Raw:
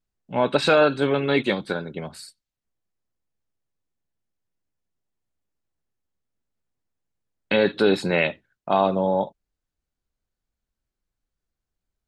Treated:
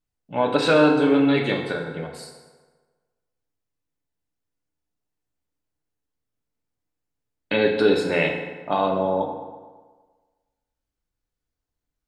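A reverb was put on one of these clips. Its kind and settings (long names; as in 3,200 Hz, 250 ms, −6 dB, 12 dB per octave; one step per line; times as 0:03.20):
feedback delay network reverb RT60 1.4 s, low-frequency decay 0.9×, high-frequency decay 0.65×, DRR 1 dB
level −2.5 dB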